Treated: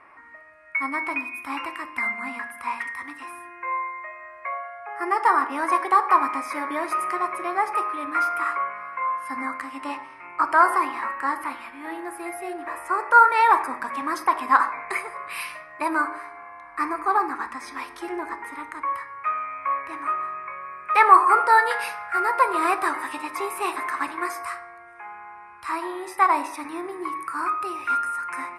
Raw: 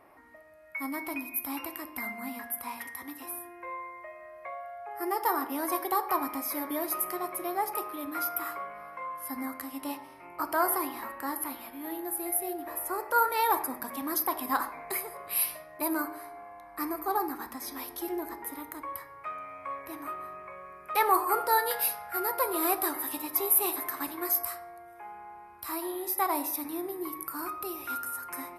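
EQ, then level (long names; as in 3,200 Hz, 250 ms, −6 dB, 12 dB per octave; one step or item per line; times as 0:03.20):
dynamic equaliser 560 Hz, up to +5 dB, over −43 dBFS, Q 0.75
elliptic low-pass filter 9,300 Hz, stop band 70 dB
flat-topped bell 1,600 Hz +12 dB
0.0 dB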